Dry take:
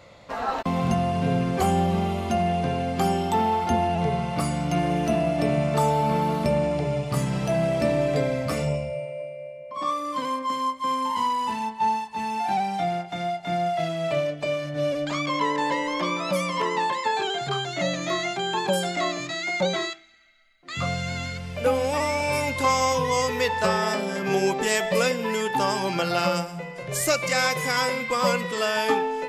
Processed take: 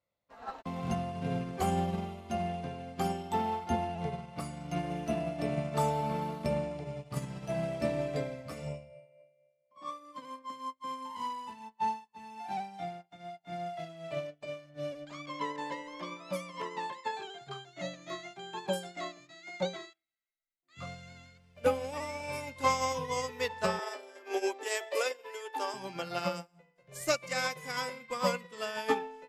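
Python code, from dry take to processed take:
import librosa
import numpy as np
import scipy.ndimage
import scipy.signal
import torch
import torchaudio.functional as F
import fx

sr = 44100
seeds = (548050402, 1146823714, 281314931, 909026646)

y = fx.steep_highpass(x, sr, hz=280.0, slope=96, at=(23.79, 25.74))
y = fx.upward_expand(y, sr, threshold_db=-41.0, expansion=2.5)
y = y * 10.0 ** (-3.5 / 20.0)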